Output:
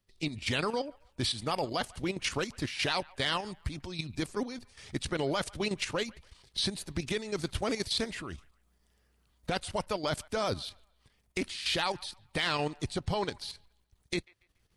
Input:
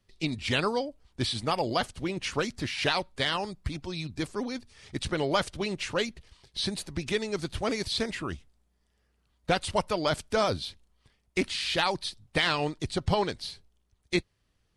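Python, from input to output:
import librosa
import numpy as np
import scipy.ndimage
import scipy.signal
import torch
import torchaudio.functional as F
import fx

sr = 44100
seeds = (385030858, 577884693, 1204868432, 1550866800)

p1 = fx.recorder_agc(x, sr, target_db=-17.5, rise_db_per_s=5.3, max_gain_db=30)
p2 = fx.high_shelf(p1, sr, hz=10000.0, db=8.0)
p3 = fx.level_steps(p2, sr, step_db=10)
y = p3 + fx.echo_wet_bandpass(p3, sr, ms=142, feedback_pct=32, hz=1400.0, wet_db=-22, dry=0)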